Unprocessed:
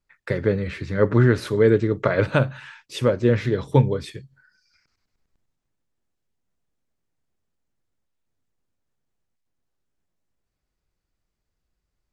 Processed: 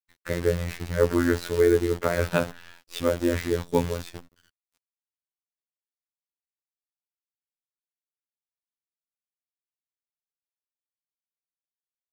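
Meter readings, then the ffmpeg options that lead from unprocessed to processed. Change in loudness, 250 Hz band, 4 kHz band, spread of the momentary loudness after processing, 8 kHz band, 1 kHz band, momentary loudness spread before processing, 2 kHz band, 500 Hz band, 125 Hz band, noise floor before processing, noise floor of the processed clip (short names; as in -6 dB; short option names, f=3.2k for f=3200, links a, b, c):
-4.0 dB, -3.5 dB, -1.0 dB, 12 LU, +5.5 dB, -3.0 dB, 11 LU, -3.5 dB, -3.0 dB, -9.5 dB, -80 dBFS, under -85 dBFS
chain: -af "acrusher=bits=6:dc=4:mix=0:aa=0.000001,afftfilt=real='hypot(re,im)*cos(PI*b)':imag='0':win_size=2048:overlap=0.75"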